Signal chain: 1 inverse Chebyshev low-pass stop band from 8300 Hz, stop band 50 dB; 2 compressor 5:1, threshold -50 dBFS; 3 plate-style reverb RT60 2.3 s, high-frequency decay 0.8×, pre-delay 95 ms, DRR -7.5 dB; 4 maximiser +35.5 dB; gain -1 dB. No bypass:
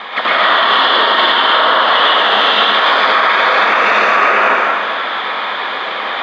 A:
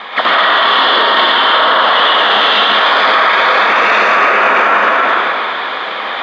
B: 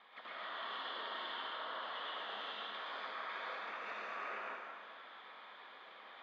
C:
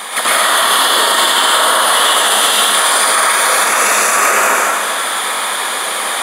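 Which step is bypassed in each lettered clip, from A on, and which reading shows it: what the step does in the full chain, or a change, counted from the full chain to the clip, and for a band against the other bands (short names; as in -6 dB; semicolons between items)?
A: 2, mean gain reduction 9.5 dB; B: 4, crest factor change +5.5 dB; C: 1, 4 kHz band +2.0 dB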